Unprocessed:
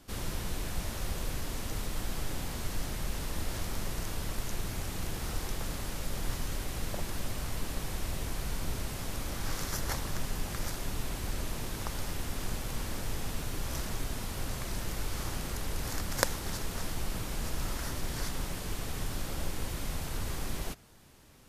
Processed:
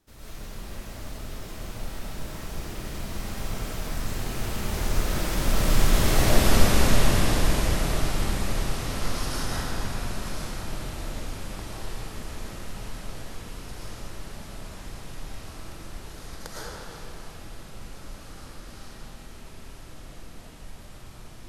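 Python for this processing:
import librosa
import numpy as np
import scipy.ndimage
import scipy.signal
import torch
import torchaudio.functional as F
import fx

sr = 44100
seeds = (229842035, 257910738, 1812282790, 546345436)

y = fx.doppler_pass(x, sr, speed_mps=40, closest_m=26.0, pass_at_s=6.37)
y = fx.rev_freeverb(y, sr, rt60_s=2.7, hf_ratio=0.7, predelay_ms=70, drr_db=-9.5)
y = y * librosa.db_to_amplitude(8.0)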